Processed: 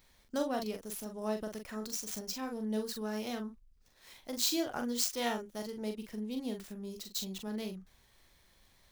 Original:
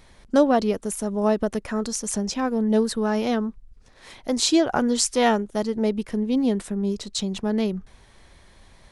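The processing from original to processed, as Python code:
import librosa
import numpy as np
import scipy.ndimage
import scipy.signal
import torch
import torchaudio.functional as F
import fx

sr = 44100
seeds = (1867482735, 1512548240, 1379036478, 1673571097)

y = scipy.signal.medfilt(x, 5)
y = F.preemphasis(torch.from_numpy(y), 0.8).numpy()
y = fx.doubler(y, sr, ms=42.0, db=-5.5)
y = y * librosa.db_to_amplitude(-3.0)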